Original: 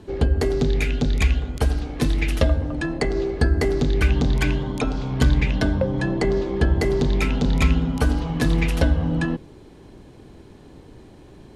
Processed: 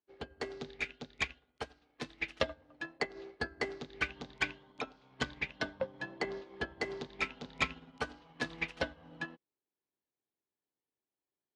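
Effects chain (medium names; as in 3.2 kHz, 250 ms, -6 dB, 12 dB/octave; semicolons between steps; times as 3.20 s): high-pass 1.2 kHz 6 dB/octave; distance through air 130 m; upward expansion 2.5:1, over -53 dBFS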